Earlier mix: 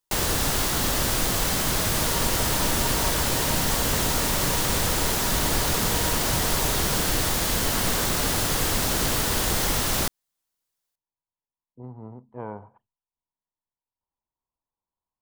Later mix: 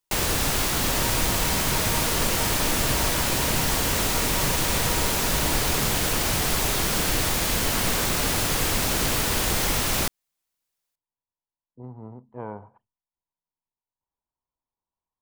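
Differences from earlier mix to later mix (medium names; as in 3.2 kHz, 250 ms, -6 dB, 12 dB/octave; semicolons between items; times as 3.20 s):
first sound: add peaking EQ 2.4 kHz +4 dB 0.41 oct; second sound: entry -1.10 s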